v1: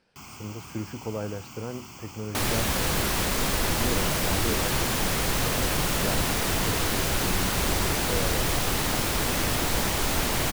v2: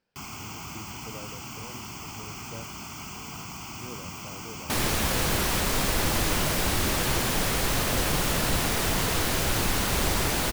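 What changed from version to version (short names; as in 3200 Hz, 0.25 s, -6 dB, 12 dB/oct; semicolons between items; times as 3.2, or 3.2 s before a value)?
speech -11.5 dB; first sound +5.0 dB; second sound: entry +2.35 s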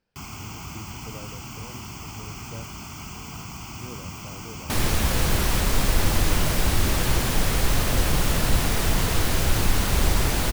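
master: add low shelf 110 Hz +10.5 dB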